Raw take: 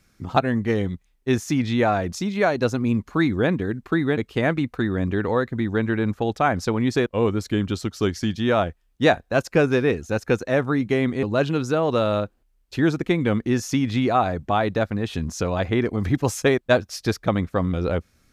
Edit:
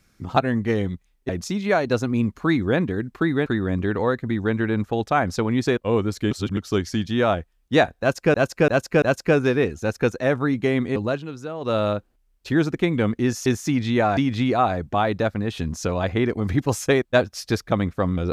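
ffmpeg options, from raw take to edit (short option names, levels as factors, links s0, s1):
-filter_complex "[0:a]asplit=12[s0][s1][s2][s3][s4][s5][s6][s7][s8][s9][s10][s11];[s0]atrim=end=1.292[s12];[s1]atrim=start=1.998:end=4.172[s13];[s2]atrim=start=4.748:end=7.602[s14];[s3]atrim=start=7.598:end=7.862,asetpts=PTS-STARTPTS,areverse[s15];[s4]atrim=start=7.858:end=9.632[s16];[s5]atrim=start=9.288:end=9.632[s17];[s6]atrim=start=9.288:end=9.632[s18];[s7]atrim=start=9.288:end=11.47,asetpts=PTS-STARTPTS,afade=t=out:st=2.022:d=0.16:silence=0.298538[s19];[s8]atrim=start=11.47:end=11.87,asetpts=PTS-STARTPTS,volume=0.299[s20];[s9]atrim=start=11.87:end=13.732,asetpts=PTS-STARTPTS,afade=t=in:d=0.16:silence=0.298538[s21];[s10]atrim=start=1.288:end=2.002[s22];[s11]atrim=start=13.728[s23];[s12][s13]acrossfade=d=0.004:c1=hsin:c2=hsin[s24];[s24][s14]acrossfade=d=0.004:c1=hsin:c2=hsin[s25];[s25][s15]acrossfade=d=0.004:c1=hsin:c2=hsin[s26];[s26][s16]acrossfade=d=0.004:c1=hsin:c2=hsin[s27];[s27][s17]acrossfade=d=0.004:c1=hsin:c2=hsin[s28];[s28][s18]acrossfade=d=0.004:c1=hsin:c2=hsin[s29];[s19][s20][s21]concat=n=3:v=0:a=1[s30];[s29][s30]acrossfade=d=0.004:c1=hsin:c2=hsin[s31];[s31][s22]acrossfade=d=0.004:c1=hsin:c2=hsin[s32];[s32][s23]acrossfade=d=0.004:c1=hsin:c2=hsin"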